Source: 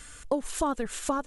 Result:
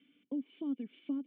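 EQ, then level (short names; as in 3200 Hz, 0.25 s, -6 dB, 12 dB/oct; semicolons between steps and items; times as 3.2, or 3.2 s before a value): vocal tract filter i; HPF 200 Hz 24 dB/oct; -1.0 dB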